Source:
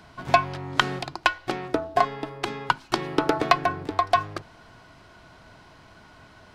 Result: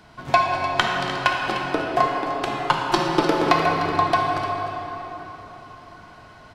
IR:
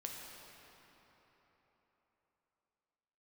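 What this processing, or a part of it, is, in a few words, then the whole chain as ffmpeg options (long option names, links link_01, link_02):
cave: -filter_complex "[0:a]asettb=1/sr,asplit=3[link_01][link_02][link_03];[link_01]atrim=end=2.524[link_04];[link_02]atrim=start=2.52:end=3.21,asetpts=PTS-STARTPTS,afade=type=in:duration=0.004:curve=qsin,afade=type=out:start_time=0.686:duration=0.004:curve=qsin,aecho=1:1:5.7:0.97,atrim=end_sample=30429[link_05];[link_03]atrim=start=3.206[link_06];[link_04][link_05]acrossfade=duration=0.004:curve1=hsin:curve2=qsin[link_07];[link_07][link_06]acrossfade=duration=0.004:curve1=qsin:curve2=hsin,aecho=1:1:301:0.266[link_08];[1:a]atrim=start_sample=2205[link_09];[link_08][link_09]afir=irnorm=-1:irlink=0,volume=4.5dB"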